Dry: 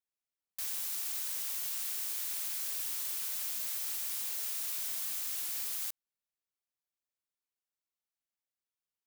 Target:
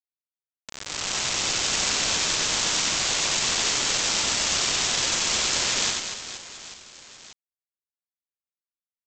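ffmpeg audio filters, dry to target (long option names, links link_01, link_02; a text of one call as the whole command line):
ffmpeg -i in.wav -af "highshelf=frequency=2000:width_type=q:width=1.5:gain=9,aecho=1:1:93|186|279|372|465:0.447|0.201|0.0905|0.0407|0.0183,dynaudnorm=framelen=260:gausssize=7:maxgain=8.5dB,aresample=16000,acrusher=bits=3:mix=0:aa=0.000001,aresample=44100,aecho=1:1:90|234|464.4|833|1423:0.631|0.398|0.251|0.158|0.1" out.wav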